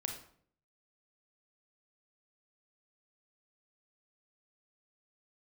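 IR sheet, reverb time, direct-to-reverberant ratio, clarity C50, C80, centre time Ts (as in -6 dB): 0.60 s, 3.0 dB, 6.0 dB, 10.0 dB, 24 ms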